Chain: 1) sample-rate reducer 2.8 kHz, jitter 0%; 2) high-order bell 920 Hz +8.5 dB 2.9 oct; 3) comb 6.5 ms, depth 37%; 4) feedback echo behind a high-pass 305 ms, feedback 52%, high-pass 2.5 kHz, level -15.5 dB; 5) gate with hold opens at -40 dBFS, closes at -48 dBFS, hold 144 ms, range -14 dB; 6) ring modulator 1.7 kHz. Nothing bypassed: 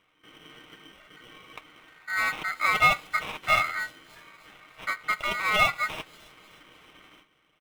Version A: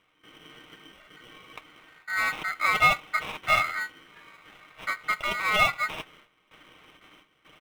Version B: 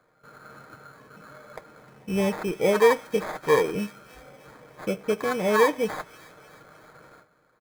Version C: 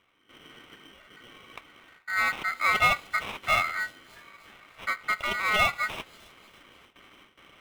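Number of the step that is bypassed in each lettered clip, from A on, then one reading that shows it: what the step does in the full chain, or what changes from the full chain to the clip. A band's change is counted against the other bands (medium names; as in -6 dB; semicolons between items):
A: 4, momentary loudness spread change -2 LU; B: 6, momentary loudness spread change -2 LU; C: 3, momentary loudness spread change -2 LU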